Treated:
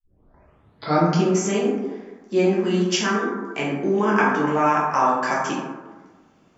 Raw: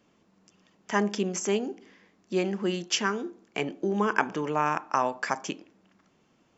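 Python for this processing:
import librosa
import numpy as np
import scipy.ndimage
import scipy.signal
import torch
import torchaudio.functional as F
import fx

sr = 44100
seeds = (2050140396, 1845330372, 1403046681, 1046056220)

y = fx.tape_start_head(x, sr, length_s=1.24)
y = fx.rev_plate(y, sr, seeds[0], rt60_s=1.3, hf_ratio=0.35, predelay_ms=0, drr_db=-6.0)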